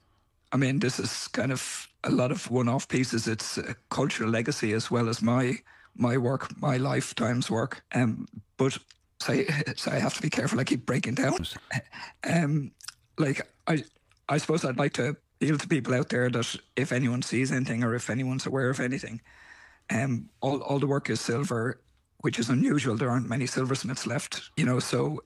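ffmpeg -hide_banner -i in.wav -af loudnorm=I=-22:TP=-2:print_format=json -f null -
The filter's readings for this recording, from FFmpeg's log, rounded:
"input_i" : "-28.4",
"input_tp" : "-12.3",
"input_lra" : "1.7",
"input_thresh" : "-38.7",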